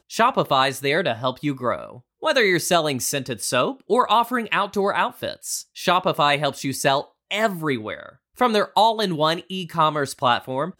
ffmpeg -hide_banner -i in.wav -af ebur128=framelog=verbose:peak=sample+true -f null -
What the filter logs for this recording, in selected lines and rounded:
Integrated loudness:
  I:         -21.5 LUFS
  Threshold: -31.7 LUFS
Loudness range:
  LRA:         1.4 LU
  Threshold: -41.8 LUFS
  LRA low:   -22.4 LUFS
  LRA high:  -21.0 LUFS
Sample peak:
  Peak:       -5.8 dBFS
True peak:
  Peak:       -5.8 dBFS